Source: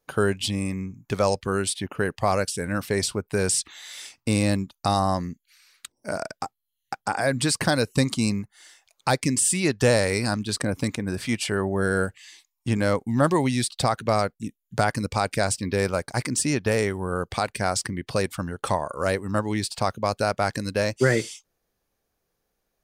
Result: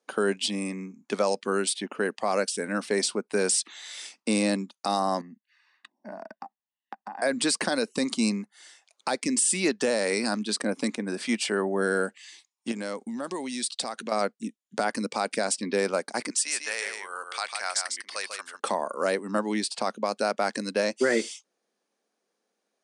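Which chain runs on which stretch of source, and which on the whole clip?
5.21–7.22 s: low-pass 1.8 kHz + comb 1.1 ms, depth 78% + compression 5:1, threshold -35 dBFS
12.71–14.12 s: compression 5:1, threshold -29 dBFS + low-pass 10 kHz 24 dB/octave + treble shelf 4.1 kHz +8.5 dB
16.30–18.60 s: high-pass 1.3 kHz + delay 148 ms -5.5 dB
whole clip: Chebyshev band-pass 210–9500 Hz, order 4; peak limiter -14 dBFS

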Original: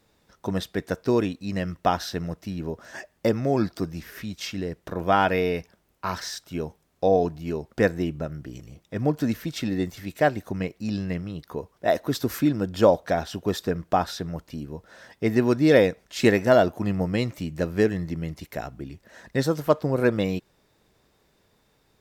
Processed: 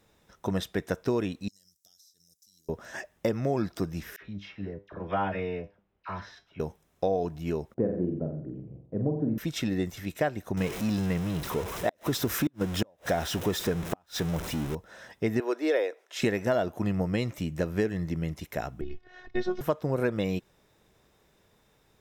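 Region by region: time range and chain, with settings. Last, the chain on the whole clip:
1.48–2.69 s: inverse Chebyshev high-pass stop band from 2.7 kHz + compression 16:1, threshold -55 dBFS
4.16–6.60 s: distance through air 300 m + feedback comb 100 Hz, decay 0.26 s, mix 70% + phase dispersion lows, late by 52 ms, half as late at 1.2 kHz
7.74–9.38 s: Butterworth band-pass 240 Hz, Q 0.54 + flutter echo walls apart 7.7 m, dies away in 0.54 s
10.57–14.75 s: jump at every zero crossing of -30.5 dBFS + inverted gate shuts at -11 dBFS, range -41 dB
15.40–16.22 s: steep high-pass 350 Hz + treble shelf 4 kHz -6 dB
18.81–19.61 s: low-pass 4.5 kHz 24 dB/octave + peaking EQ 73 Hz +13.5 dB 1.8 oct + robot voice 363 Hz
whole clip: peaking EQ 270 Hz -3 dB 0.23 oct; compression 4:1, threshold -24 dBFS; band-stop 4.5 kHz, Q 7.6

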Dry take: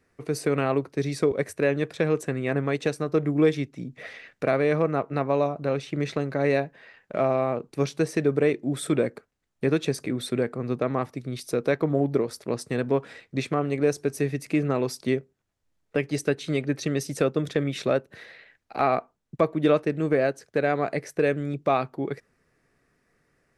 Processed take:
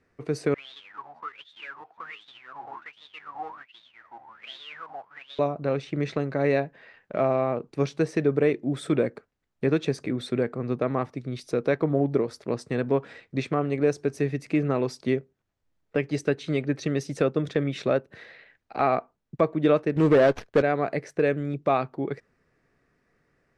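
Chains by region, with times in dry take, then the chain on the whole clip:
0.54–5.39 s: square wave that keeps the level + ever faster or slower copies 107 ms, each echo -5 st, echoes 2, each echo -6 dB + wah-wah 1.3 Hz 760–3700 Hz, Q 20
19.96–20.62 s: waveshaping leveller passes 2 + treble shelf 6.7 kHz +9 dB + sliding maximum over 5 samples
whole clip: low-pass 7.5 kHz 12 dB/octave; treble shelf 4 kHz -6 dB

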